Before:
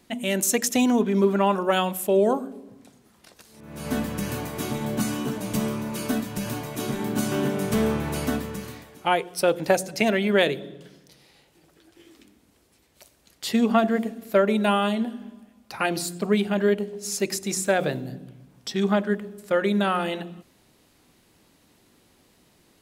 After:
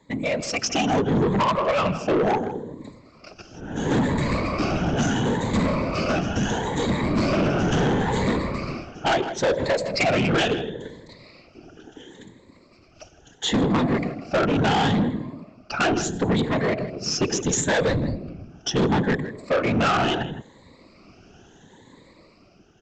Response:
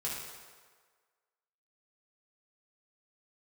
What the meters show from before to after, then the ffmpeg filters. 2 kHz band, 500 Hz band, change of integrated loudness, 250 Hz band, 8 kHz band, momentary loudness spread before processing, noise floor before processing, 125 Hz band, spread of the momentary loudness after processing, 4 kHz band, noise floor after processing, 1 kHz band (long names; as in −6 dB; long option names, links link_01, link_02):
+3.0 dB, 0.0 dB, +1.5 dB, +1.0 dB, −0.5 dB, 13 LU, −61 dBFS, +6.5 dB, 11 LU, +4.0 dB, −54 dBFS, +3.0 dB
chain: -filter_complex "[0:a]afftfilt=real='re*pow(10,17/40*sin(2*PI*(1*log(max(b,1)*sr/1024/100)/log(2)-(0.73)*(pts-256)/sr)))':imag='im*pow(10,17/40*sin(2*PI*(1*log(max(b,1)*sr/1024/100)/log(2)-(0.73)*(pts-256)/sr)))':win_size=1024:overlap=0.75,afftfilt=real='hypot(re,im)*cos(2*PI*random(0))':imag='hypot(re,im)*sin(2*PI*random(1))':win_size=512:overlap=0.75,asplit=2[link_01][link_02];[link_02]adynamicsmooth=sensitivity=7:basefreq=2700,volume=-1.5dB[link_03];[link_01][link_03]amix=inputs=2:normalize=0,alimiter=limit=-11dB:level=0:latency=1:release=173,adynamicequalizer=threshold=0.0178:dfrequency=340:dqfactor=0.93:tfrequency=340:tqfactor=0.93:attack=5:release=100:ratio=0.375:range=2:mode=cutabove:tftype=bell,asplit=2[link_04][link_05];[link_05]adelay=160,highpass=300,lowpass=3400,asoftclip=type=hard:threshold=-19.5dB,volume=-16dB[link_06];[link_04][link_06]amix=inputs=2:normalize=0,dynaudnorm=framelen=130:gausssize=11:maxgain=9dB,aresample=16000,asoftclip=type=tanh:threshold=-17dB,aresample=44100"